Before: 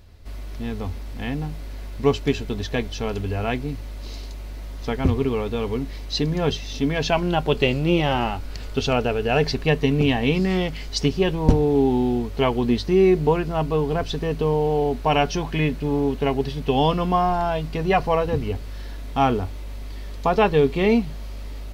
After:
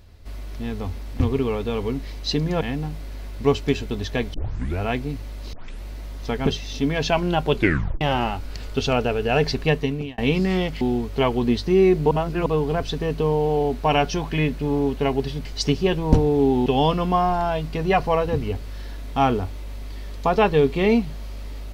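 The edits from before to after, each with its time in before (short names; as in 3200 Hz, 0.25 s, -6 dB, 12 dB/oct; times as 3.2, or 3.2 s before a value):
2.93 tape start 0.46 s
4.12 tape start 0.30 s
5.06–6.47 move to 1.2
7.55 tape stop 0.46 s
9.69–10.18 fade out
10.81–12.02 move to 16.66
13.32–13.67 reverse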